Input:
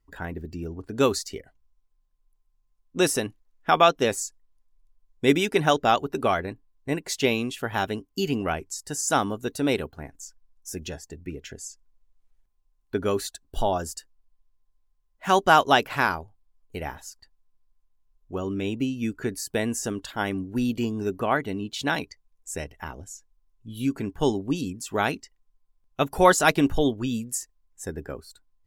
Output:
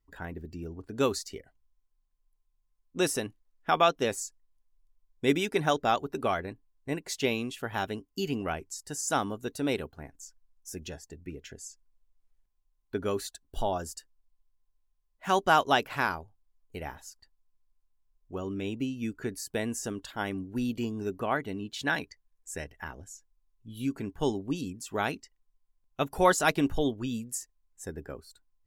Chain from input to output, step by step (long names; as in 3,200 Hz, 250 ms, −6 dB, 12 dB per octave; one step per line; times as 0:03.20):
0:05.47–0:06.15: notch filter 2,900 Hz, Q 13
0:21.56–0:23.09: parametric band 1,700 Hz +7 dB 0.32 octaves
level −5.5 dB